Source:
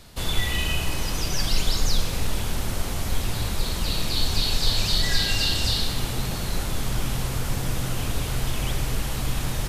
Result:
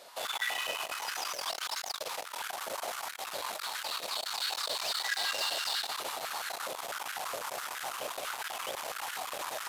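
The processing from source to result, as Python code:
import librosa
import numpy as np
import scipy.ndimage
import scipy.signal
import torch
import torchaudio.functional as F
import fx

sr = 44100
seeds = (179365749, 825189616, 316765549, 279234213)

y = 10.0 ** (-24.5 / 20.0) * np.tanh(x / 10.0 ** (-24.5 / 20.0))
y = fx.filter_held_highpass(y, sr, hz=12.0, low_hz=570.0, high_hz=1500.0)
y = y * 10.0 ** (-3.5 / 20.0)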